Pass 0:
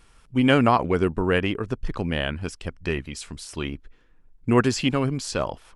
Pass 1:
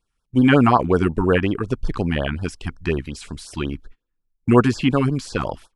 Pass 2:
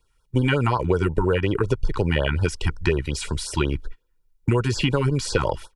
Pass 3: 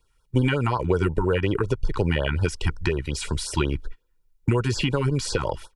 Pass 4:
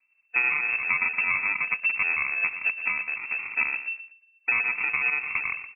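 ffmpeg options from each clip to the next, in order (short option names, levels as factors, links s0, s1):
-filter_complex "[0:a]agate=range=0.0562:threshold=0.00708:ratio=16:detection=peak,acrossover=split=2600[s0][s1];[s1]acompressor=threshold=0.01:ratio=4:attack=1:release=60[s2];[s0][s2]amix=inputs=2:normalize=0,afftfilt=real='re*(1-between(b*sr/1024,470*pow(2500/470,0.5+0.5*sin(2*PI*5.5*pts/sr))/1.41,470*pow(2500/470,0.5+0.5*sin(2*PI*5.5*pts/sr))*1.41))':imag='im*(1-between(b*sr/1024,470*pow(2500/470,0.5+0.5*sin(2*PI*5.5*pts/sr))/1.41,470*pow(2500/470,0.5+0.5*sin(2*PI*5.5*pts/sr))*1.41))':win_size=1024:overlap=0.75,volume=1.78"
-filter_complex "[0:a]acrossover=split=160|3000[s0][s1][s2];[s1]acompressor=threshold=0.141:ratio=6[s3];[s0][s3][s2]amix=inputs=3:normalize=0,aecho=1:1:2.1:0.59,acompressor=threshold=0.0708:ratio=6,volume=2"
-af "alimiter=limit=0.316:level=0:latency=1:release=416"
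-filter_complex "[0:a]asplit=2[s0][s1];[s1]aecho=0:1:118|236|354:0.266|0.0772|0.0224[s2];[s0][s2]amix=inputs=2:normalize=0,acrusher=samples=42:mix=1:aa=0.000001,lowpass=f=2300:t=q:w=0.5098,lowpass=f=2300:t=q:w=0.6013,lowpass=f=2300:t=q:w=0.9,lowpass=f=2300:t=q:w=2.563,afreqshift=-2700,volume=0.668"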